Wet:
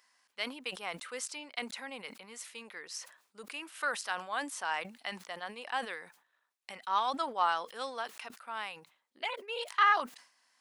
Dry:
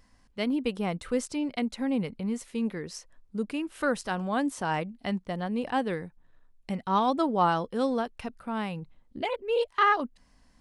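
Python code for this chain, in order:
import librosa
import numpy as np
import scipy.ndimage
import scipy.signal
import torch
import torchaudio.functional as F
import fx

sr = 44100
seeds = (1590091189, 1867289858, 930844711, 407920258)

y = scipy.signal.sosfilt(scipy.signal.butter(2, 1100.0, 'highpass', fs=sr, output='sos'), x)
y = fx.sustainer(y, sr, db_per_s=120.0)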